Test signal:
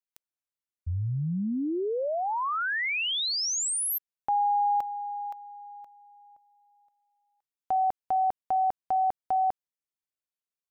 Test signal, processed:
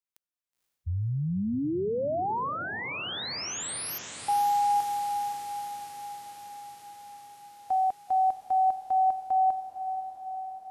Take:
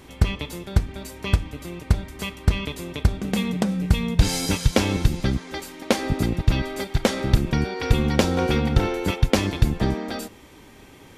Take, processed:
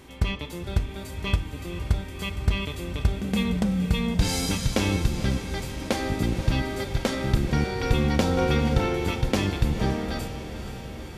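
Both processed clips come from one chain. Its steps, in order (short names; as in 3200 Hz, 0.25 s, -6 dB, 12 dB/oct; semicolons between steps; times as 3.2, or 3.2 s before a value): diffused feedback echo 0.5 s, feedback 71%, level -12.5 dB; harmonic-percussive split percussive -7 dB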